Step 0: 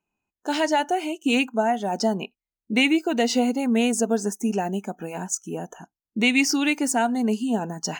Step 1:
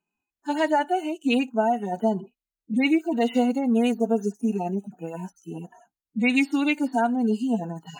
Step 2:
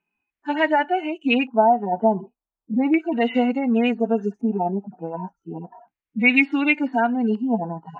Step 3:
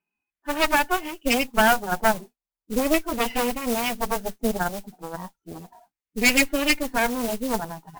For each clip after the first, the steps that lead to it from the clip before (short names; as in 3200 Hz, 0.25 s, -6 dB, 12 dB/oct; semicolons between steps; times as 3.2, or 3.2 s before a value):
median-filter separation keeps harmonic
LFO low-pass square 0.34 Hz 970–2300 Hz; gain +1.5 dB
modulation noise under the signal 16 dB; added harmonics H 6 -7 dB, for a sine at -3.5 dBFS; gain -5.5 dB